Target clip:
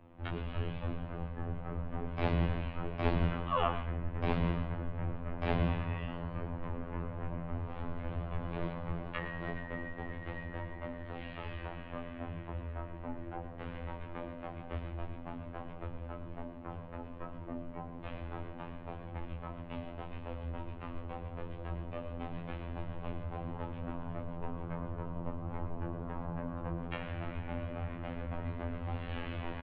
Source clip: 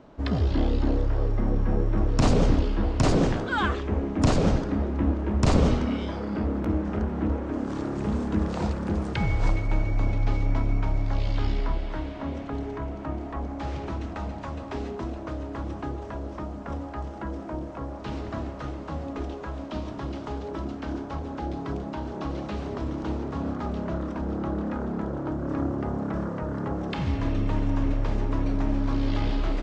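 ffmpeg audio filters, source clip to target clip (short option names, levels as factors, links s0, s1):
-filter_complex "[0:a]flanger=delay=19:depth=2.5:speed=2.3,afftfilt=real='hypot(re,im)*cos(PI*b)':imag='0':win_size=2048:overlap=0.75,asplit=2[s0][s1];[s1]aecho=0:1:114:0.266[s2];[s0][s2]amix=inputs=2:normalize=0,highpass=f=280:t=q:w=0.5412,highpass=f=280:t=q:w=1.307,lowpass=f=3400:t=q:w=0.5176,lowpass=f=3400:t=q:w=0.7071,lowpass=f=3400:t=q:w=1.932,afreqshift=-350,volume=1.26"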